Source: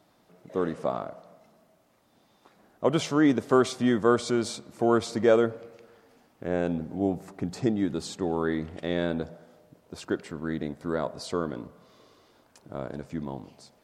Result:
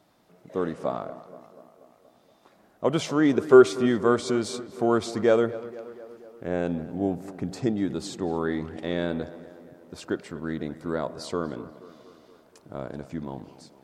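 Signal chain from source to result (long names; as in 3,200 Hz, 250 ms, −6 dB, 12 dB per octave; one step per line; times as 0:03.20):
0:03.33–0:03.86: hollow resonant body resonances 390/1,400/2,500 Hz, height 10 dB
tape delay 239 ms, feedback 68%, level −15.5 dB, low-pass 2,400 Hz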